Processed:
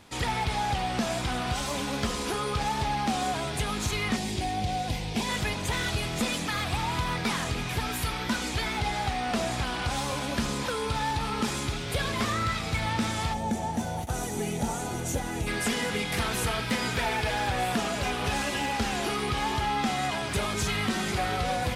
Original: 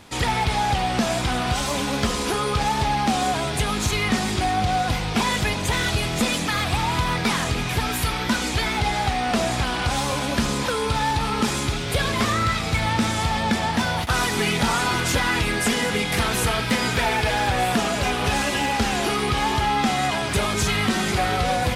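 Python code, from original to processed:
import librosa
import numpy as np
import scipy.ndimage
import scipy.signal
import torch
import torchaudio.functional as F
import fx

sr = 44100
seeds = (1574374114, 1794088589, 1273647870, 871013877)

y = fx.peak_eq(x, sr, hz=1300.0, db=-12.5, octaves=0.7, at=(4.16, 5.29))
y = fx.spec_box(y, sr, start_s=13.33, length_s=2.14, low_hz=910.0, high_hz=5600.0, gain_db=-11)
y = F.gain(torch.from_numpy(y), -6.5).numpy()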